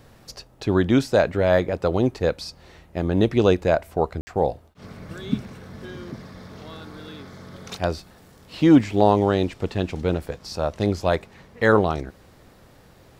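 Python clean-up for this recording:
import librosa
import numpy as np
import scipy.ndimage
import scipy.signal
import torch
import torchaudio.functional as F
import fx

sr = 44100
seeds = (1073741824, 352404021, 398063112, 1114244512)

y = fx.fix_ambience(x, sr, seeds[0], print_start_s=12.49, print_end_s=12.99, start_s=4.21, end_s=4.27)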